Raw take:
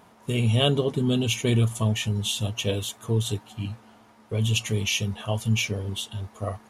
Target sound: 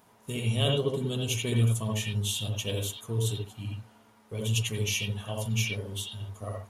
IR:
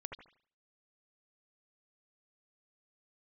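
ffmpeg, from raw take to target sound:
-filter_complex "[0:a]crystalizer=i=1.5:c=0[a];[1:a]atrim=start_sample=2205,afade=t=out:st=0.19:d=0.01,atrim=end_sample=8820[b];[a][b]afir=irnorm=-1:irlink=0,volume=-3dB"

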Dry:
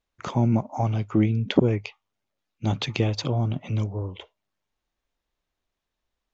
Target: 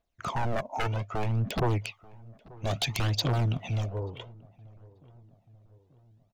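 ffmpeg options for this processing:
-filter_complex "[0:a]equalizer=f=680:w=6.2:g=11,aeval=exprs='0.1*(abs(mod(val(0)/0.1+3,4)-2)-1)':c=same,aphaser=in_gain=1:out_gain=1:delay=2.4:decay=0.56:speed=0.61:type=triangular,asoftclip=type=tanh:threshold=-17dB,asplit=2[a][b];[b]adelay=885,lowpass=f=1.1k:p=1,volume=-22dB,asplit=2[c][d];[d]adelay=885,lowpass=f=1.1k:p=1,volume=0.53,asplit=2[e][f];[f]adelay=885,lowpass=f=1.1k:p=1,volume=0.53,asplit=2[g][h];[h]adelay=885,lowpass=f=1.1k:p=1,volume=0.53[i];[a][c][e][g][i]amix=inputs=5:normalize=0,asplit=3[j][k][l];[j]afade=t=out:st=1.69:d=0.02[m];[k]adynamicequalizer=threshold=0.00562:dfrequency=2000:dqfactor=0.7:tfrequency=2000:tqfactor=0.7:attack=5:release=100:ratio=0.375:range=3:mode=boostabove:tftype=highshelf,afade=t=in:st=1.69:d=0.02,afade=t=out:st=3.88:d=0.02[n];[l]afade=t=in:st=3.88:d=0.02[o];[m][n][o]amix=inputs=3:normalize=0,volume=-3.5dB"

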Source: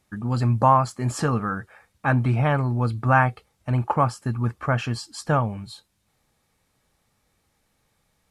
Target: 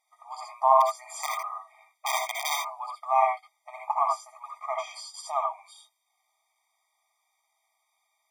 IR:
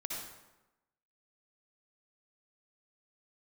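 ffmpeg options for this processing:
-filter_complex "[0:a]asplit=3[a][b][c];[a]afade=t=out:st=0.8:d=0.02[d];[b]aeval=exprs='(mod(5.01*val(0)+1,2)-1)/5.01':c=same,afade=t=in:st=0.8:d=0.02,afade=t=out:st=2.72:d=0.02[e];[c]afade=t=in:st=2.72:d=0.02[f];[d][e][f]amix=inputs=3:normalize=0[g];[1:a]atrim=start_sample=2205,atrim=end_sample=3969[h];[g][h]afir=irnorm=-1:irlink=0,afftfilt=real='re*eq(mod(floor(b*sr/1024/630),2),1)':imag='im*eq(mod(floor(b*sr/1024/630),2),1)':win_size=1024:overlap=0.75"

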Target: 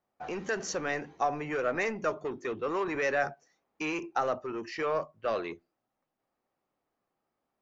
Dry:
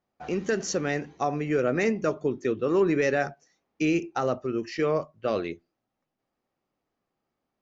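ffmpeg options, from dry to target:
-filter_complex "[0:a]equalizer=f=920:w=0.46:g=6.5,acrossover=split=600|2100[a][b][c];[a]asoftclip=type=tanh:threshold=-29.5dB[d];[d][b][c]amix=inputs=3:normalize=0,volume=-5.5dB"

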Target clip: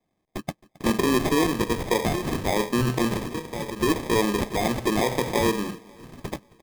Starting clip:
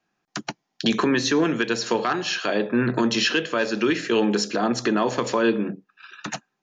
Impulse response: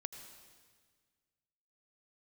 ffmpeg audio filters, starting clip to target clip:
-filter_complex "[0:a]asettb=1/sr,asplit=3[a][b][c];[a]atrim=end=3.164[d];[b]atrim=start=3.16:end=3.8,asetpts=PTS-STARTPTS,afade=t=in:d=0.004:c=qsin,afade=t=out:st=0.636:d=0.004:c=qsin,acrossover=split=530|1700[e][f][g];[e]acompressor=threshold=-29dB:ratio=4[h];[f]acompressor=threshold=-39dB:ratio=4[i];[g]acompressor=threshold=-33dB:ratio=4[j];[h][i][j]amix=inputs=3:normalize=0[k];[c]atrim=start=3.796[l];[d][k]acrossfade=d=0.004:c1=hsin:c2=qsin[m];[m][l]acrossfade=d=0.004:c1=qsin:c2=hsin,asubboost=boost=8.5:cutoff=72,acrusher=samples=31:mix=1:aa=0.000001,asplit=2[n][o];[o]aecho=0:1:268|536|804|1072:0.0708|0.0382|0.0206|0.0111[p];[n][p]amix=inputs=2:normalize=0"

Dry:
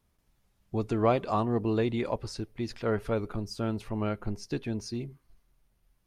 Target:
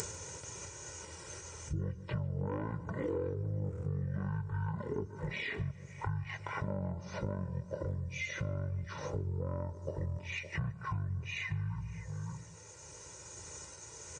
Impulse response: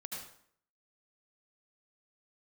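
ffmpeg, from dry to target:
-filter_complex "[0:a]asplit=2[a][b];[b]aeval=exprs='0.251*sin(PI/2*2.82*val(0)/0.251)':c=same,volume=-9dB[c];[a][c]amix=inputs=2:normalize=0,aecho=1:1:0.9:0.8,asplit=2[d][e];[e]adelay=240,highpass=300,lowpass=3.4k,asoftclip=type=hard:threshold=-18dB,volume=-16dB[f];[d][f]amix=inputs=2:normalize=0,acompressor=mode=upward:threshold=-21dB:ratio=2.5,asetrate=18846,aresample=44100,highpass=f=86:w=0.5412,highpass=f=86:w=1.3066,asplit=2[g][h];[h]adelay=146,lowpass=f=4.9k:p=1,volume=-19dB,asplit=2[i][j];[j]adelay=146,lowpass=f=4.9k:p=1,volume=0.5,asplit=2[k][l];[l]adelay=146,lowpass=f=4.9k:p=1,volume=0.5,asplit=2[m][n];[n]adelay=146,lowpass=f=4.9k:p=1,volume=0.5[o];[i][k][m][o]amix=inputs=4:normalize=0[p];[g][p]amix=inputs=2:normalize=0,acompressor=threshold=-34dB:ratio=6,highshelf=f=5.6k:t=q:w=3:g=9"

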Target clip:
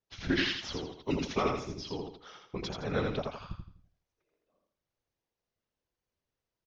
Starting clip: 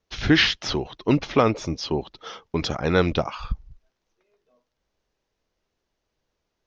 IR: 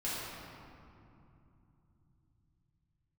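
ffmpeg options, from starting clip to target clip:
-filter_complex "[0:a]asettb=1/sr,asplit=3[a][b][c];[a]atrim=end=1.024[d];[b]atrim=start=1.02:end=1.53,asetpts=PTS-STARTPTS,afade=t=in:d=0.004:c=qsin,afade=t=out:st=0.506:d=0.004:c=qsin,aemphasis=mode=production:type=75kf[e];[c]atrim=start=1.526[f];[d][e]acrossfade=d=0.004:c1=hsin:c2=qsin[g];[g][f]acrossfade=d=0.004:c1=qsin:c2=hsin,afftfilt=real='hypot(re,im)*cos(2*PI*random(0))':imag='hypot(re,im)*sin(2*PI*random(1))':win_size=512:overlap=0.75,aecho=1:1:83|166|249|332:0.631|0.202|0.0646|0.0207,volume=-7dB"

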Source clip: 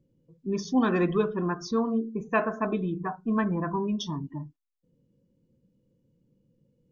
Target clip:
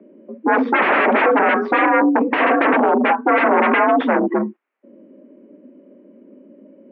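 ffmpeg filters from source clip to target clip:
-af "aeval=exprs='0.251*sin(PI/2*10*val(0)/0.251)':c=same,highpass=f=180:t=q:w=0.5412,highpass=f=180:t=q:w=1.307,lowpass=f=2.3k:t=q:w=0.5176,lowpass=f=2.3k:t=q:w=0.7071,lowpass=f=2.3k:t=q:w=1.932,afreqshift=63,volume=1.5dB"

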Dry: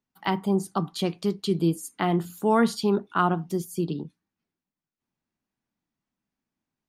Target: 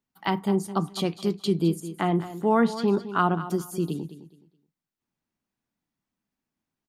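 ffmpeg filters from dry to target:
-filter_complex "[0:a]asettb=1/sr,asplit=3[a][b][c];[a]atrim=end=1.804[d];[b]atrim=start=1.8:end=2.88,asetpts=PTS-STARTPTS,afade=t=in:d=0.004:c=qsin,afade=t=out:st=1.076:d=0.004:c=qsin,lowpass=f=2.9k:p=1[e];[c]atrim=start=2.876[f];[d][e]acrossfade=d=0.004:c1=hsin:c2=qsin[g];[g][f]acrossfade=d=0.004:c1=qsin:c2=hsin,aecho=1:1:211|422|633:0.211|0.0528|0.0132"

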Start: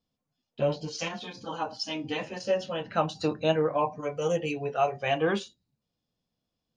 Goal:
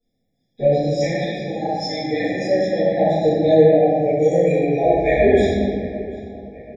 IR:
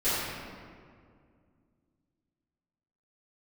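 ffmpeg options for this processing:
-filter_complex "[0:a]asettb=1/sr,asplit=3[a][b][c];[a]atrim=end=2.944[d];[b]atrim=start=2.94:end=4.17,asetpts=PTS-STARTPTS,afade=t=in:d=0.004:c=qsin,afade=t=out:st=1.226:d=0.004:c=qsin,highshelf=f=4.3k:g=-9.5[e];[c]atrim=start=4.166[f];[d][e]acrossfade=d=0.004:c1=hsin:c2=qsin[g];[g][f]acrossfade=d=0.004:c1=qsin:c2=hsin,asplit=3[h][i][j];[h]afade=t=out:st=4.82:d=0.02[k];[i]afreqshift=-79,afade=t=in:st=4.82:d=0.02,afade=t=out:st=5.29:d=0.02[l];[j]afade=t=in:st=5.29:d=0.02[m];[k][l][m]amix=inputs=3:normalize=0,asplit=2[n][o];[o]adelay=740,lowpass=f=3.9k:p=1,volume=-19.5dB,asplit=2[p][q];[q]adelay=740,lowpass=f=3.9k:p=1,volume=0.52,asplit=2[r][s];[s]adelay=740,lowpass=f=3.9k:p=1,volume=0.52,asplit=2[t][u];[u]adelay=740,lowpass=f=3.9k:p=1,volume=0.52[v];[n][p][r][t][v]amix=inputs=5:normalize=0[w];[1:a]atrim=start_sample=2205[x];[w][x]afir=irnorm=-1:irlink=0,afftfilt=real='re*eq(mod(floor(b*sr/1024/820),2),0)':imag='im*eq(mod(floor(b*sr/1024/820),2),0)':win_size=1024:overlap=0.75,volume=-1dB"

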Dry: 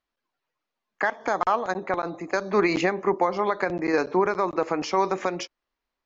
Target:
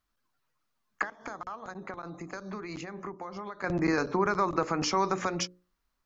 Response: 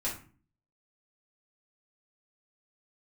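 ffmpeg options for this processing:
-filter_complex "[0:a]bass=f=250:g=14,treble=f=4k:g=10,alimiter=limit=-14.5dB:level=0:latency=1:release=154,equalizer=f=1.3k:w=1.7:g=8,asettb=1/sr,asplit=3[a][b][c];[a]atrim=end=1.024[d];[b]atrim=start=1.02:end=3.64,asetpts=PTS-STARTPTS,afade=t=in:d=0.004:c=qsin,afade=t=out:st=2.616:d=0.004:c=qsin,acompressor=threshold=-32dB:ratio=12[e];[c]atrim=start=3.636[f];[d][e]acrossfade=d=0.004:c1=hsin:c2=qsin[g];[g][f]acrossfade=d=0.004:c1=qsin:c2=hsin,bandreject=f=60:t=h:w=6,bandreject=f=120:t=h:w=6,bandreject=f=180:t=h:w=6,bandreject=f=240:t=h:w=6,bandreject=f=300:t=h:w=6,bandreject=f=360:t=h:w=6,bandreject=f=420:t=h:w=6,bandreject=f=480:t=h:w=6,bandreject=f=540:t=h:w=6,volume=-3.5dB"

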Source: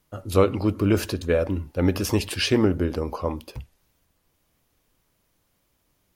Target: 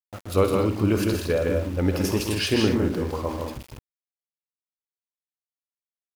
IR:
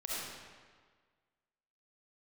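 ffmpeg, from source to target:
-af "aecho=1:1:54|67|123|159|206|264:0.251|0.126|0.282|0.631|0.398|0.15,aeval=exprs='val(0)*gte(abs(val(0)),0.0188)':c=same,volume=-2.5dB"

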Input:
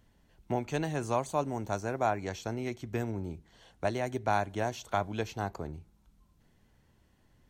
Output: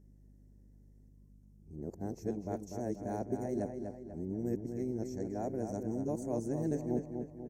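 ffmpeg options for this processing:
-filter_complex "[0:a]areverse,firequalizer=gain_entry='entry(100,0);entry(180,8);entry(330,9);entry(1200,-20);entry(1800,-9);entry(3100,-29);entry(5400,0);entry(11000,2)':delay=0.05:min_phase=1,asplit=2[a][b];[b]adelay=245,lowpass=f=4k:p=1,volume=-6dB,asplit=2[c][d];[d]adelay=245,lowpass=f=4k:p=1,volume=0.48,asplit=2[e][f];[f]adelay=245,lowpass=f=4k:p=1,volume=0.48,asplit=2[g][h];[h]adelay=245,lowpass=f=4k:p=1,volume=0.48,asplit=2[i][j];[j]adelay=245,lowpass=f=4k:p=1,volume=0.48,asplit=2[k][l];[l]adelay=245,lowpass=f=4k:p=1,volume=0.48[m];[a][c][e][g][i][k][m]amix=inputs=7:normalize=0,aeval=exprs='val(0)+0.00316*(sin(2*PI*50*n/s)+sin(2*PI*2*50*n/s)/2+sin(2*PI*3*50*n/s)/3+sin(2*PI*4*50*n/s)/4+sin(2*PI*5*50*n/s)/5)':c=same,volume=-8dB"

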